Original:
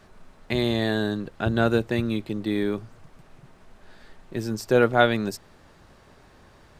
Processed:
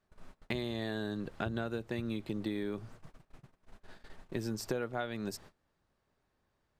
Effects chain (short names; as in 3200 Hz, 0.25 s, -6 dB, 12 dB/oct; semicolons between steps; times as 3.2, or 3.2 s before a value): gate -46 dBFS, range -23 dB; compressor 16:1, threshold -29 dBFS, peak gain reduction 18 dB; gain -2.5 dB